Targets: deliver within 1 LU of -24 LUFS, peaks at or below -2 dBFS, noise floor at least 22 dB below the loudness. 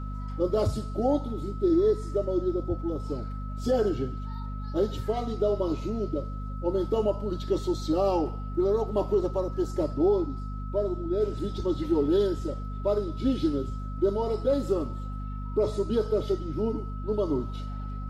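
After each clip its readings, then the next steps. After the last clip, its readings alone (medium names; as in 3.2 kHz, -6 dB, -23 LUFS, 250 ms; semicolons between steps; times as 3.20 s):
hum 50 Hz; highest harmonic 250 Hz; hum level -32 dBFS; steady tone 1.3 kHz; tone level -44 dBFS; loudness -28.5 LUFS; peak level -14.0 dBFS; loudness target -24.0 LUFS
-> hum notches 50/100/150/200/250 Hz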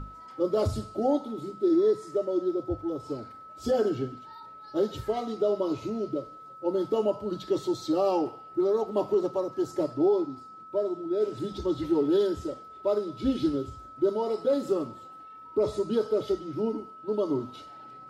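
hum not found; steady tone 1.3 kHz; tone level -44 dBFS
-> band-stop 1.3 kHz, Q 30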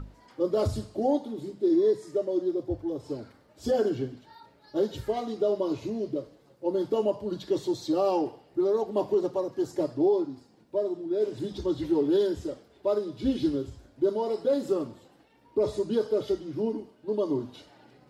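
steady tone not found; loudness -29.0 LUFS; peak level -15.0 dBFS; loudness target -24.0 LUFS
-> trim +5 dB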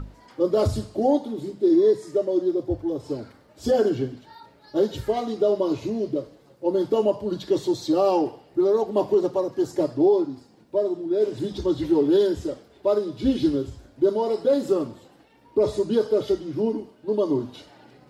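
loudness -24.0 LUFS; peak level -10.0 dBFS; noise floor -55 dBFS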